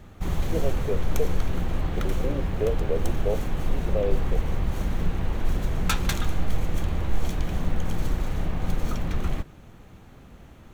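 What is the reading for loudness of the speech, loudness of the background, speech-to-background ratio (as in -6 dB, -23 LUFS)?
-32.5 LUFS, -30.0 LUFS, -2.5 dB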